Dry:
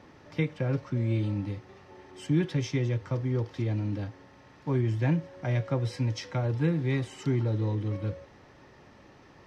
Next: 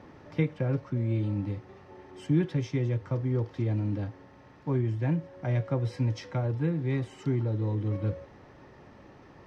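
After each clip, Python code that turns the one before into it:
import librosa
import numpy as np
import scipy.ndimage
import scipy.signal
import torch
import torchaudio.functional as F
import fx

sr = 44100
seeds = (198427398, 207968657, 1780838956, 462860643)

y = fx.high_shelf(x, sr, hz=2200.0, db=-8.5)
y = fx.rider(y, sr, range_db=4, speed_s=0.5)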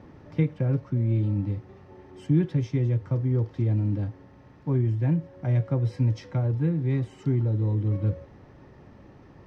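y = fx.low_shelf(x, sr, hz=320.0, db=9.0)
y = y * 10.0 ** (-3.0 / 20.0)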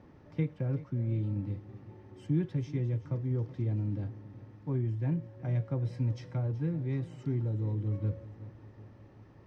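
y = fx.echo_feedback(x, sr, ms=376, feedback_pct=56, wet_db=-17.0)
y = y * 10.0 ** (-7.5 / 20.0)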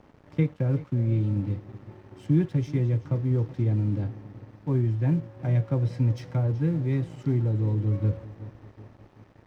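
y = np.sign(x) * np.maximum(np.abs(x) - 10.0 ** (-57.0 / 20.0), 0.0)
y = y * 10.0 ** (7.5 / 20.0)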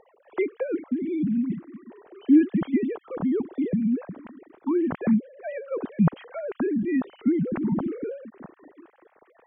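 y = fx.sine_speech(x, sr)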